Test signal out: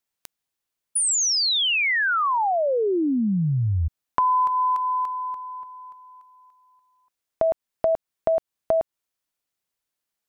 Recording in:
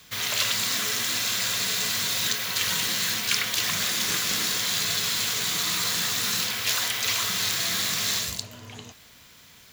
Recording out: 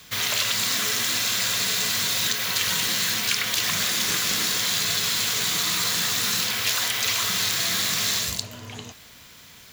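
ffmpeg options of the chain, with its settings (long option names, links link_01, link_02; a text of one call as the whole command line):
ffmpeg -i in.wav -af "acompressor=threshold=-24dB:ratio=4,volume=4dB" out.wav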